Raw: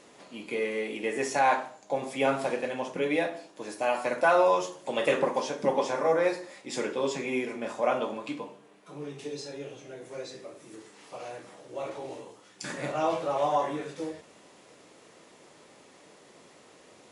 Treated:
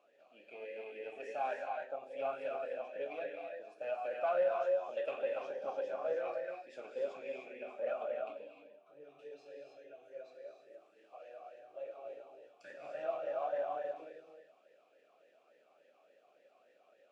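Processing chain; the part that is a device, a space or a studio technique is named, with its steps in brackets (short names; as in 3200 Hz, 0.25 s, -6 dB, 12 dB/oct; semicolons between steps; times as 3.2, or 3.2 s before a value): non-linear reverb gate 0.33 s rising, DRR 1.5 dB; talk box (tube stage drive 18 dB, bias 0.65; vowel sweep a-e 3.5 Hz); gain -1.5 dB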